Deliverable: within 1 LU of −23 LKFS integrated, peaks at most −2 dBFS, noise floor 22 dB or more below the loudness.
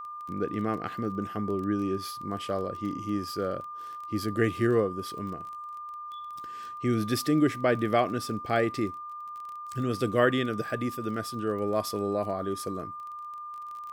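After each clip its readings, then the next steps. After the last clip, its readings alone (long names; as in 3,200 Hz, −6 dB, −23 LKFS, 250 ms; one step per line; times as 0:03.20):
crackle rate 23 per second; interfering tone 1,200 Hz; level of the tone −37 dBFS; integrated loudness −30.5 LKFS; sample peak −10.0 dBFS; target loudness −23.0 LKFS
→ click removal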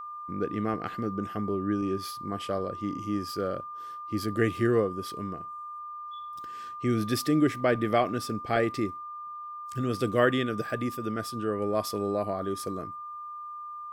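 crackle rate 0.65 per second; interfering tone 1,200 Hz; level of the tone −37 dBFS
→ notch filter 1,200 Hz, Q 30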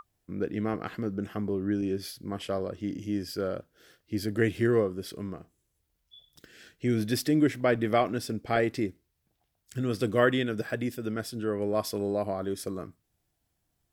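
interfering tone none found; integrated loudness −30.0 LKFS; sample peak −10.0 dBFS; target loudness −23.0 LKFS
→ level +7 dB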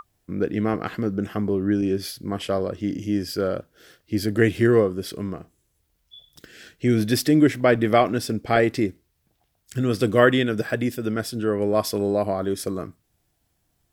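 integrated loudness −23.0 LKFS; sample peak −3.0 dBFS; background noise floor −71 dBFS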